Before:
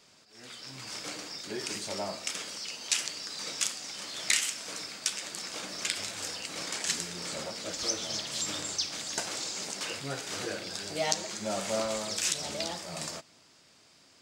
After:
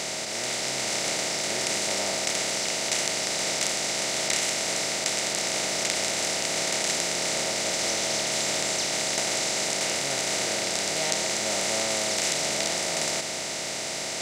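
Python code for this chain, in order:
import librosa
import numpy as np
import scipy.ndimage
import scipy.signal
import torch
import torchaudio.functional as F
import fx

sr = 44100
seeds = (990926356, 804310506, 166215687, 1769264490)

y = fx.bin_compress(x, sr, power=0.2)
y = y * librosa.db_to_amplitude(-5.0)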